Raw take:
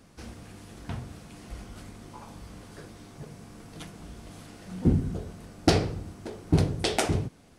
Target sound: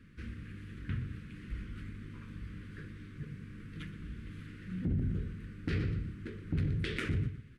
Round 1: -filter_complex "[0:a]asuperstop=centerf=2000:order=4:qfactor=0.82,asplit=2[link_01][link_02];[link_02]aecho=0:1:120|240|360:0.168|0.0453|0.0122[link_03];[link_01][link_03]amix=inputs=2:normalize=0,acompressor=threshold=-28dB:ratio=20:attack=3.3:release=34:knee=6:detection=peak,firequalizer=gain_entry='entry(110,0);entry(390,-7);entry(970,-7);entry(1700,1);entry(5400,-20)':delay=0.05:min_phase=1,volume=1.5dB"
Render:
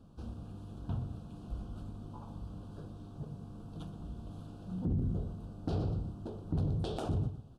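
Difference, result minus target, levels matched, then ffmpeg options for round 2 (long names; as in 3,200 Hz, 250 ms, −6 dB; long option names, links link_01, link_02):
2,000 Hz band −17.5 dB
-filter_complex "[0:a]asuperstop=centerf=750:order=4:qfactor=0.82,asplit=2[link_01][link_02];[link_02]aecho=0:1:120|240|360:0.168|0.0453|0.0122[link_03];[link_01][link_03]amix=inputs=2:normalize=0,acompressor=threshold=-28dB:ratio=20:attack=3.3:release=34:knee=6:detection=peak,firequalizer=gain_entry='entry(110,0);entry(390,-7);entry(970,-7);entry(1700,1);entry(5400,-20)':delay=0.05:min_phase=1,volume=1.5dB"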